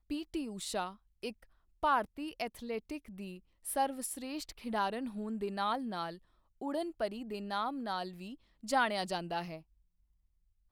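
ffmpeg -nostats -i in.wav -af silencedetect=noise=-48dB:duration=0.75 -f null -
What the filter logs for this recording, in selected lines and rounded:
silence_start: 9.60
silence_end: 10.71 | silence_duration: 1.11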